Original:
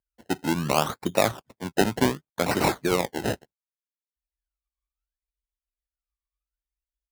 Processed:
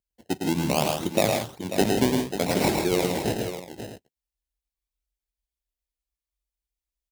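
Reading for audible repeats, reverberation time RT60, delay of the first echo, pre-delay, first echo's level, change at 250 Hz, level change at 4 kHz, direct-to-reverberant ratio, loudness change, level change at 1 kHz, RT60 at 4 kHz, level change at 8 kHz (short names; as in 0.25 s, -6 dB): 4, none, 0.108 s, none, -4.5 dB, +2.0 dB, +1.5 dB, none, +0.5 dB, -1.5 dB, none, +2.0 dB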